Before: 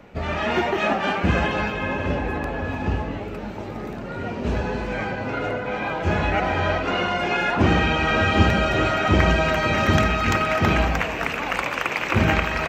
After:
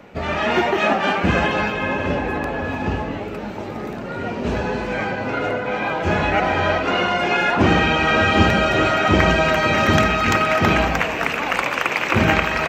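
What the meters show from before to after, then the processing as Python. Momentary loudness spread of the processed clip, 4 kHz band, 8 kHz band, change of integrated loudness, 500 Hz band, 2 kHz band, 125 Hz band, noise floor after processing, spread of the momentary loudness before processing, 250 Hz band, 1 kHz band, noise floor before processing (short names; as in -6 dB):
10 LU, +4.0 dB, +4.0 dB, +3.5 dB, +3.5 dB, +4.0 dB, 0.0 dB, -29 dBFS, 10 LU, +3.0 dB, +4.0 dB, -32 dBFS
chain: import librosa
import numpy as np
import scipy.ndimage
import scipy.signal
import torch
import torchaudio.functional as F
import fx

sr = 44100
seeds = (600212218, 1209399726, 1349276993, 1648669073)

y = fx.low_shelf(x, sr, hz=76.0, db=-11.5)
y = F.gain(torch.from_numpy(y), 4.0).numpy()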